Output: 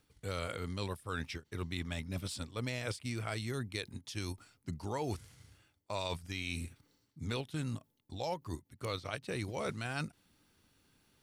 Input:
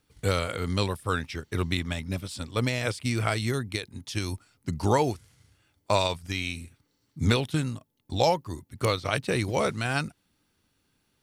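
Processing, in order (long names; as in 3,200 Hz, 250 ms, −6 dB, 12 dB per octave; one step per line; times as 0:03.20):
reversed playback
downward compressor 6 to 1, threshold −37 dBFS, peak gain reduction 18 dB
reversed playback
every ending faded ahead of time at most 360 dB per second
level +1.5 dB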